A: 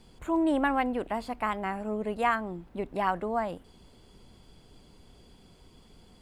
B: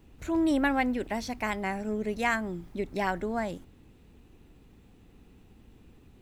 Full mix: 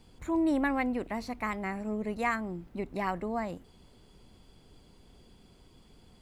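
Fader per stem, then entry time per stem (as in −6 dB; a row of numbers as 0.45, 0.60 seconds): −3.0, −10.0 decibels; 0.00, 0.00 seconds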